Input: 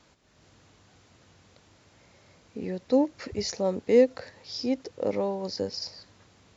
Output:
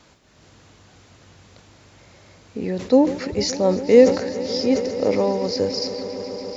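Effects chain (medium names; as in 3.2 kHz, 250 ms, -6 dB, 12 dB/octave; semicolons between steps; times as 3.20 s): echo with a slow build-up 142 ms, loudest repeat 5, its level -18 dB; decay stretcher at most 110 dB/s; trim +7.5 dB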